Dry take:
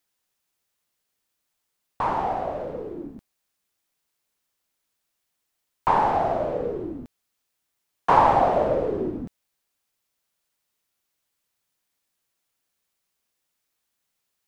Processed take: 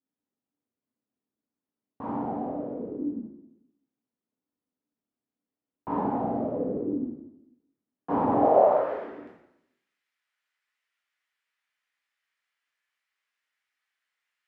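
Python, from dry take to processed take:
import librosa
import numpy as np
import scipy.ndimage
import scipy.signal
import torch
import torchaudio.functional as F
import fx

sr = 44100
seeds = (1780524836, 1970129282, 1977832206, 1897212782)

y = fx.filter_sweep_bandpass(x, sr, from_hz=250.0, to_hz=1900.0, start_s=8.28, end_s=8.91, q=2.2)
y = fx.rev_plate(y, sr, seeds[0], rt60_s=0.85, hf_ratio=0.85, predelay_ms=0, drr_db=-5.5)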